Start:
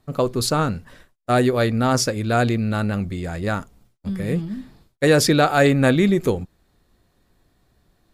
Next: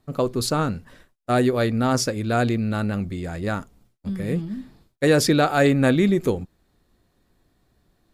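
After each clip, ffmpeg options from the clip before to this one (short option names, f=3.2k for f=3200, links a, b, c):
-af "equalizer=f=280:t=o:w=1.2:g=2.5,volume=-3dB"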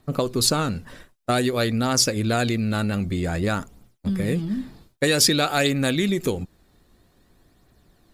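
-filter_complex "[0:a]acrossover=split=2300[a][b];[a]acompressor=threshold=-26dB:ratio=6[c];[b]aphaser=in_gain=1:out_gain=1:delay=2.3:decay=0.51:speed=0.52:type=triangular[d];[c][d]amix=inputs=2:normalize=0,volume=6dB"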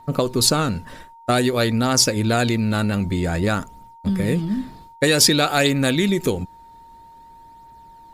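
-af "aeval=exprs='val(0)+0.00501*sin(2*PI*920*n/s)':c=same,volume=3dB"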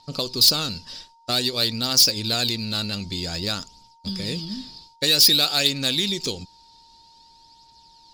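-af "lowpass=f=4.9k:t=q:w=6.7,aexciter=amount=2.4:drive=9.5:freq=2.7k,volume=-10dB"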